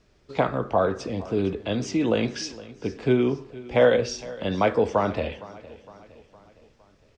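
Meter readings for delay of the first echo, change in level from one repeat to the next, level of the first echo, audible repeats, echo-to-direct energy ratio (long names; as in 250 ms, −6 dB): 461 ms, −6.0 dB, −19.0 dB, 3, −17.5 dB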